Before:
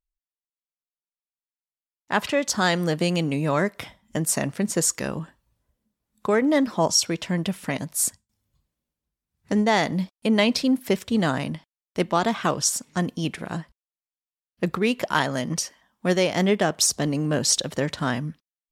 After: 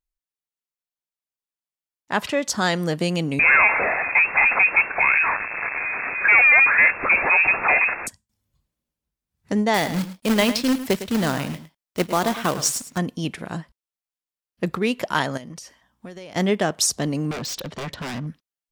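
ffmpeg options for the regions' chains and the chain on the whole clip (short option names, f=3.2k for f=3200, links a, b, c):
-filter_complex "[0:a]asettb=1/sr,asplit=3[a][b][c];[a]atrim=end=3.394[d];[b]atrim=start=3.39:end=8.07,asetpts=PTS-STARTPTS,afade=t=in:d=0.004:c=qsin,afade=t=out:st=4.676:d=0.004:c=qsin,aeval=exprs='val(0)+0.5*0.0237*sgn(val(0))':c=same,asplit=2[e][f];[f]highpass=f=720:p=1,volume=30dB,asoftclip=type=tanh:threshold=-7.5dB[g];[e][g]amix=inputs=2:normalize=0,lowpass=f=2k:p=1,volume=-6dB,lowpass=f=2.3k:t=q:w=0.5098,lowpass=f=2.3k:t=q:w=0.6013,lowpass=f=2.3k:t=q:w=0.9,lowpass=f=2.3k:t=q:w=2.563,afreqshift=-2700[h];[c]atrim=start=8.066[i];[d][h]acrossfade=d=0.004:c1=hsin:c2=qsin[j];[j][i]acrossfade=d=0.004:c1=qsin:c2=hsin,asettb=1/sr,asplit=3[k][l][m];[k]atrim=end=9.744[n];[l]atrim=start=9.74:end=12.98,asetpts=PTS-STARTPTS,afade=t=in:d=0.004:c=qsin,afade=t=out:st=3.236:d=0.004:c=qsin,acrusher=bits=2:mode=log:mix=0:aa=0.000001,aecho=1:1:107:0.237,atrim=end_sample=142884[o];[m]atrim=start=12.976[p];[n][o]acrossfade=d=0.004:c1=hsin:c2=qsin[q];[q][p]acrossfade=d=0.004:c1=qsin:c2=hsin,asettb=1/sr,asplit=3[r][s][t];[r]atrim=end=15.374[u];[s]atrim=start=15.37:end=16.36,asetpts=PTS-STARTPTS,afade=t=in:d=0.004:c=qsin,afade=t=out:st=0.986:d=0.004:c=qsin,acompressor=threshold=-34dB:ratio=16:attack=3.2:release=140:knee=1:detection=peak,aeval=exprs='val(0)+0.000251*(sin(2*PI*60*n/s)+sin(2*PI*2*60*n/s)/2+sin(2*PI*3*60*n/s)/3+sin(2*PI*4*60*n/s)/4+sin(2*PI*5*60*n/s)/5)':c=same[v];[t]atrim=start=16.356[w];[u][v]acrossfade=d=0.004:c1=hsin:c2=qsin[x];[x][w]acrossfade=d=0.004:c1=qsin:c2=hsin,asettb=1/sr,asplit=3[y][z][aa];[y]atrim=end=17.314[ab];[z]atrim=start=17.31:end=18.27,asetpts=PTS-STARTPTS,afade=t=in:d=0.004:c=qsin,afade=t=out:st=0.956:d=0.004:c=qsin,lowpass=4.4k,aeval=exprs='0.0596*(abs(mod(val(0)/0.0596+3,4)-2)-1)':c=same[ac];[aa]atrim=start=18.266[ad];[ab][ac]acrossfade=d=0.004:c1=hsin:c2=qsin[ae];[ae][ad]acrossfade=d=0.004:c1=qsin:c2=hsin"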